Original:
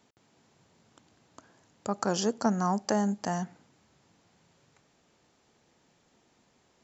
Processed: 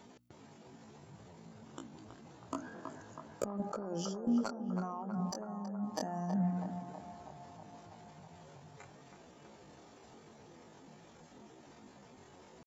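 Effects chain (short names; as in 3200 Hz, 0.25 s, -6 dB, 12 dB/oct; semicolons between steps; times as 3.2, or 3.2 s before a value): spectral contrast raised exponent 1.5; notches 60/120/180/240/300 Hz; negative-ratio compressor -41 dBFS, ratio -1; soft clip -26 dBFS, distortion -18 dB; dynamic EQ 300 Hz, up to +5 dB, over -56 dBFS, Q 1; tempo 0.54×; on a send: narrowing echo 0.323 s, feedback 75%, band-pass 880 Hz, level -5 dB; on the sum: gain +1 dB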